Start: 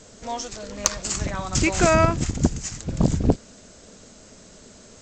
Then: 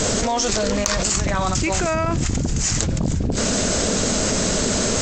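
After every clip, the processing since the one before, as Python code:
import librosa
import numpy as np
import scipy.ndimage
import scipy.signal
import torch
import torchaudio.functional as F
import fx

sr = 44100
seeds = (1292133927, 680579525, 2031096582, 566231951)

y = fx.env_flatten(x, sr, amount_pct=100)
y = y * 10.0 ** (-7.0 / 20.0)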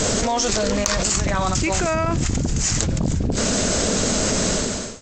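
y = fx.fade_out_tail(x, sr, length_s=0.5)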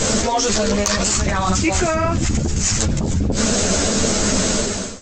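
y = fx.ensemble(x, sr)
y = y * 10.0 ** (5.5 / 20.0)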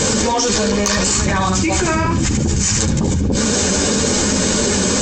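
y = fx.notch_comb(x, sr, f0_hz=670.0)
y = y + 10.0 ** (-9.5 / 20.0) * np.pad(y, (int(73 * sr / 1000.0), 0))[:len(y)]
y = fx.env_flatten(y, sr, amount_pct=100)
y = y * 10.0 ** (-1.5 / 20.0)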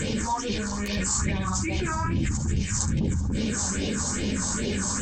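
y = fx.phaser_stages(x, sr, stages=4, low_hz=400.0, high_hz=1300.0, hz=2.4, feedback_pct=35)
y = y * 10.0 ** (-8.5 / 20.0)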